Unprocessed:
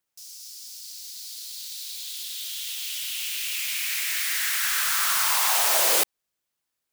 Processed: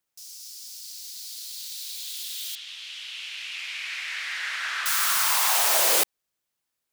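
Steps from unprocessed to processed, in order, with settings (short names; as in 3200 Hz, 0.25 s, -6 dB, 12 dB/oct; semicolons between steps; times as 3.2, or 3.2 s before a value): 2.55–4.86 LPF 3300 Hz 12 dB/oct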